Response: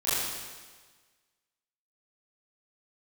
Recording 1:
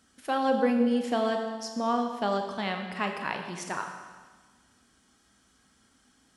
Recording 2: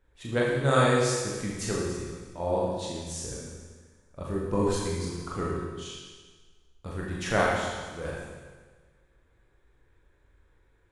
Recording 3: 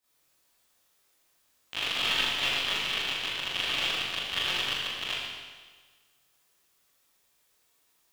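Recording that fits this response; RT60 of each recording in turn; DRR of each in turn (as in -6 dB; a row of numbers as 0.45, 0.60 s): 3; 1.4, 1.4, 1.4 s; 3.5, -4.5, -14.0 dB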